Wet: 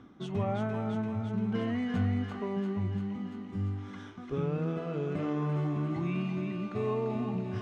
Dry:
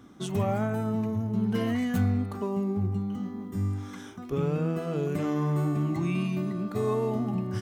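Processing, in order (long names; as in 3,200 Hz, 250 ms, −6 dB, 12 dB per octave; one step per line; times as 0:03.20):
feedback echo with a high-pass in the loop 343 ms, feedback 76%, high-pass 1,200 Hz, level −4 dB
reversed playback
upward compression, threshold −35 dBFS
reversed playback
low-pass filter 3,500 Hz 12 dB per octave
level −4 dB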